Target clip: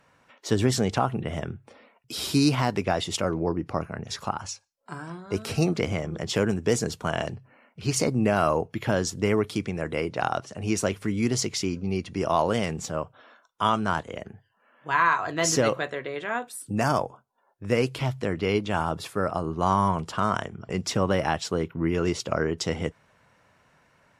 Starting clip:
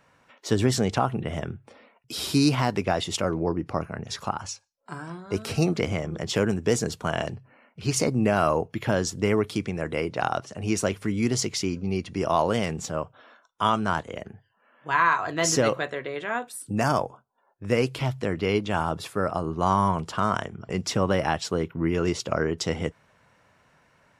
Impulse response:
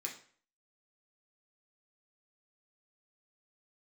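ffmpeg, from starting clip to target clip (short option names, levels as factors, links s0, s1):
-ar 44100 -c:a libmp3lame -b:a 80k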